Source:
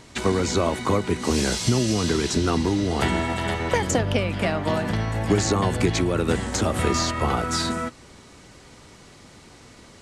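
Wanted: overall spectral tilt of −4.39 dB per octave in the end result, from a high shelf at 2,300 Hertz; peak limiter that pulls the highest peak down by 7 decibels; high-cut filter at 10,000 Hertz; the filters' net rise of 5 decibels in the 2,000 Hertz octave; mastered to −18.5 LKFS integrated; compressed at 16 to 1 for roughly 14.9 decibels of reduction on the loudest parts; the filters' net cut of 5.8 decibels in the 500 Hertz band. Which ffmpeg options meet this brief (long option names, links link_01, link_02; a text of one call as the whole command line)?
ffmpeg -i in.wav -af "lowpass=10000,equalizer=frequency=500:width_type=o:gain=-8,equalizer=frequency=2000:width_type=o:gain=8,highshelf=frequency=2300:gain=-3,acompressor=threshold=-32dB:ratio=16,volume=19.5dB,alimiter=limit=-7.5dB:level=0:latency=1" out.wav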